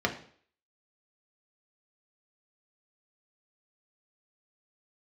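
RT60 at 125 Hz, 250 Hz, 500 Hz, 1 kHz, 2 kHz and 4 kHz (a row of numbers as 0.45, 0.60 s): 0.50, 0.50, 0.55, 0.50, 0.50, 0.50 s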